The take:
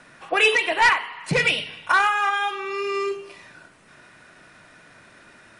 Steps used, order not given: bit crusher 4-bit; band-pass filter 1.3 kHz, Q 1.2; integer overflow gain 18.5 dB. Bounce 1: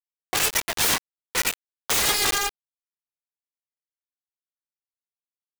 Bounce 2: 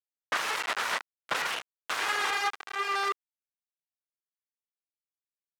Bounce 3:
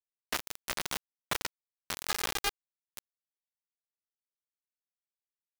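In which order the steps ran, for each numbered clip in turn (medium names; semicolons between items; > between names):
band-pass filter > integer overflow > bit crusher; integer overflow > bit crusher > band-pass filter; integer overflow > band-pass filter > bit crusher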